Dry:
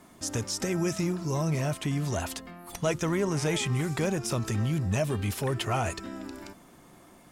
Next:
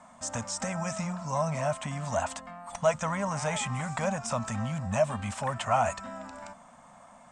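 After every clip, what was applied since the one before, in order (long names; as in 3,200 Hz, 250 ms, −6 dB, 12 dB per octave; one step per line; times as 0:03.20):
drawn EQ curve 140 Hz 0 dB, 240 Hz +6 dB, 350 Hz −22 dB, 580 Hz +11 dB, 1,000 Hz +13 dB, 1,800 Hz +6 dB, 4,700 Hz −1 dB, 8,300 Hz +9 dB, 12,000 Hz −25 dB
level −6 dB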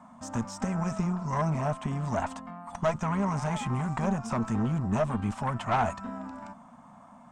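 graphic EQ with 10 bands 125 Hz +3 dB, 250 Hz +9 dB, 500 Hz −6 dB, 1,000 Hz +4 dB, 2,000 Hz −5 dB, 4,000 Hz −4 dB, 8,000 Hz −10 dB
tube saturation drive 21 dB, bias 0.65
level +3 dB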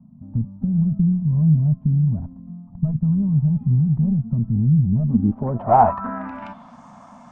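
low-pass filter sweep 150 Hz → 5,900 Hz, 0:04.94–0:06.81
level +7.5 dB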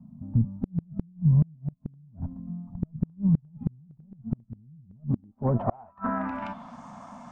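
gate with flip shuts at −13 dBFS, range −35 dB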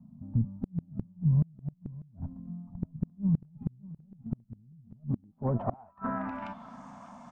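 single-tap delay 595 ms −19 dB
level −4.5 dB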